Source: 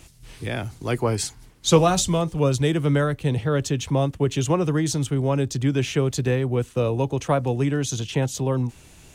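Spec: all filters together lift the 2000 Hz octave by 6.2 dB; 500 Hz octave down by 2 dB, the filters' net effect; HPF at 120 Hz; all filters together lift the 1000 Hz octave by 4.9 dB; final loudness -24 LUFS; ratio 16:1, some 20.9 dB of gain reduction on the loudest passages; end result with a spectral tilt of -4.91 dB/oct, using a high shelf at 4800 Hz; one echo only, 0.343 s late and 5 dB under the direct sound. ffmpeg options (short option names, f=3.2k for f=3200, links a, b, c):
-af "highpass=120,equalizer=f=500:t=o:g=-4,equalizer=f=1k:t=o:g=6,equalizer=f=2k:t=o:g=7.5,highshelf=f=4.8k:g=-7,acompressor=threshold=-32dB:ratio=16,aecho=1:1:343:0.562,volume=12dB"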